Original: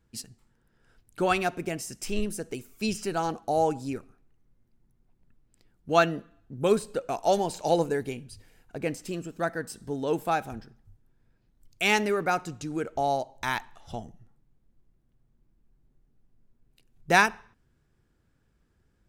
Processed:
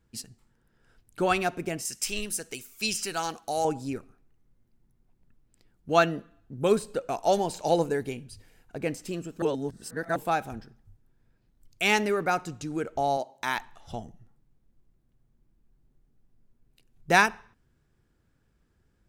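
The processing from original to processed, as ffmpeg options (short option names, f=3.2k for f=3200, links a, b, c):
-filter_complex "[0:a]asettb=1/sr,asplit=3[a][b][c];[a]atrim=end=1.854[d];[b]atrim=start=1.85:end=3.65,asetpts=PTS-STARTPTS,afade=t=in:d=0.004:c=qsin,afade=t=out:st=1.796:d=0.004:c=qsin,tiltshelf=f=1.2k:g=-8[e];[c]atrim=start=3.646[f];[d][e]acrossfade=d=0.004:c1=hsin:c2=qsin[g];[g][f]acrossfade=d=0.004:c1=qsin:c2=hsin,asettb=1/sr,asplit=3[h][i][j];[h]atrim=end=13.174[k];[i]atrim=start=13.17:end=13.58,asetpts=PTS-STARTPTS,afade=t=in:d=0.004:c=qsin,afade=t=out:st=0.406:d=0.004:c=qsin,highpass=190[l];[j]atrim=start=13.576[m];[k][l]acrossfade=d=0.004:c1=hsin:c2=qsin[n];[n][m]acrossfade=d=0.004:c1=qsin:c2=hsin,asplit=3[o][p][q];[o]atrim=end=9.422[r];[p]atrim=start=9.418:end=10.162,asetpts=PTS-STARTPTS,areverse[s];[q]atrim=start=10.158[t];[r][s]acrossfade=d=0.004:c1=hsin:c2=hsin[u];[u][t]acrossfade=d=0.004:c1=hsin:c2=hsin"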